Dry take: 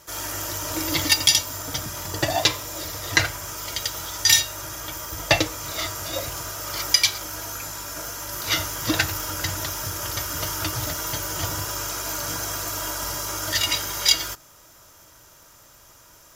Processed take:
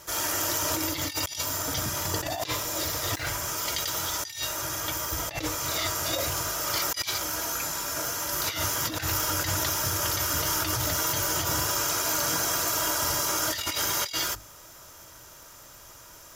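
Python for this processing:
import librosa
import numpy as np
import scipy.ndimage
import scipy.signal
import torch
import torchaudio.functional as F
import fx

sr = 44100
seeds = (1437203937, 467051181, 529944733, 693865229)

y = fx.hum_notches(x, sr, base_hz=50, count=6)
y = fx.over_compress(y, sr, threshold_db=-29.0, ratio=-1.0)
y = fx.quant_dither(y, sr, seeds[0], bits=8, dither='triangular', at=(2.79, 3.28))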